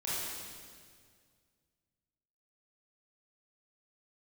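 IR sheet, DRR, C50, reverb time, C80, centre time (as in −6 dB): −9.5 dB, −4.5 dB, 2.0 s, −1.0 dB, 142 ms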